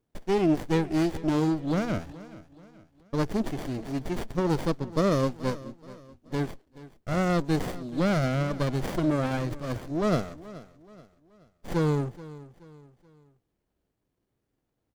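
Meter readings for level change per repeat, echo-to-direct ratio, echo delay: -7.5 dB, -17.0 dB, 428 ms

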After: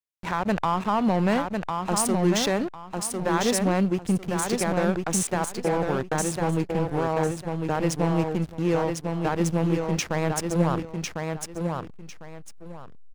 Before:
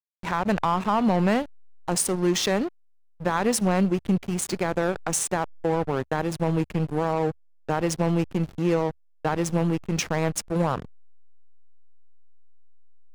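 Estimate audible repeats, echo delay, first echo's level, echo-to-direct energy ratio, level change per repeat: 2, 1051 ms, -4.5 dB, -4.5 dB, -12.5 dB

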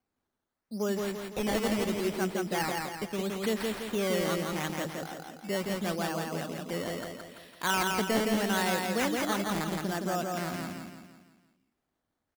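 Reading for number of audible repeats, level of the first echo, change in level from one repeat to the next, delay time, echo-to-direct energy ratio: 5, -3.0 dB, -6.5 dB, 168 ms, -2.0 dB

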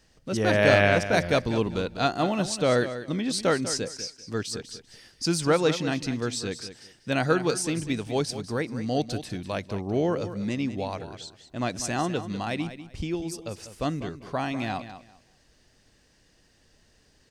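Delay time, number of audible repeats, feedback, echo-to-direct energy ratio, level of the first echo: 196 ms, 2, 21%, -12.0 dB, -12.0 dB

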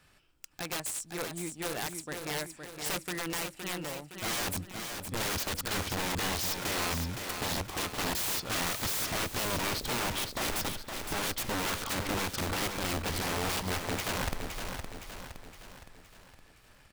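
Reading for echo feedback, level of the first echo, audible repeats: 50%, -6.5 dB, 5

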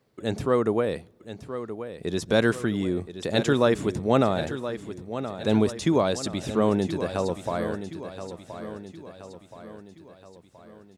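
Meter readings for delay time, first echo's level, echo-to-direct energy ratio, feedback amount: 1024 ms, -11.0 dB, -10.0 dB, 50%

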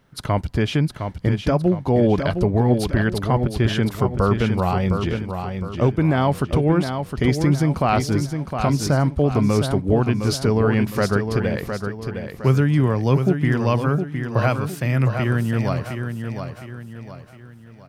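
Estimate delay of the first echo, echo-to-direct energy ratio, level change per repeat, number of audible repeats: 711 ms, -6.0 dB, -8.0 dB, 4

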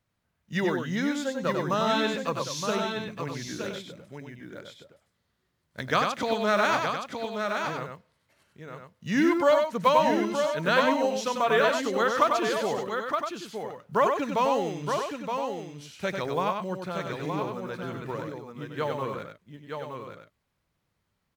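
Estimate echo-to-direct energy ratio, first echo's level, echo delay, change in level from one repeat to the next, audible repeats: -2.0 dB, -5.0 dB, 96 ms, no regular repeats, 3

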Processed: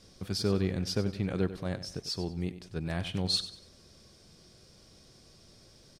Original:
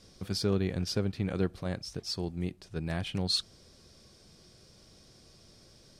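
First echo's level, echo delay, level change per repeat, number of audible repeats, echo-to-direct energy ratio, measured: -13.0 dB, 95 ms, -10.0 dB, 3, -12.5 dB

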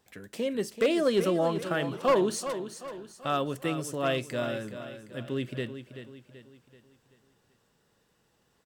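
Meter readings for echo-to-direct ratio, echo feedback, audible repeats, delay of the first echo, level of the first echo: -9.5 dB, 45%, 4, 383 ms, -10.5 dB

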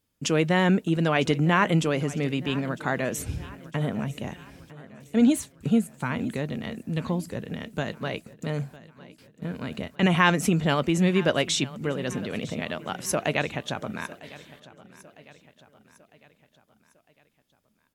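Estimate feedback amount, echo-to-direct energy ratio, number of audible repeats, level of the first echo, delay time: 50%, -18.0 dB, 3, -19.0 dB, 954 ms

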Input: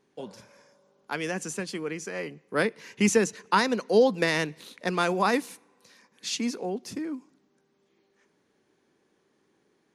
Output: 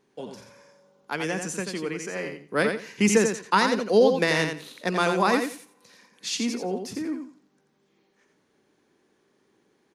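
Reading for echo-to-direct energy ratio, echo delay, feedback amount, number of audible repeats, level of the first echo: -6.0 dB, 87 ms, 20%, 3, -6.0 dB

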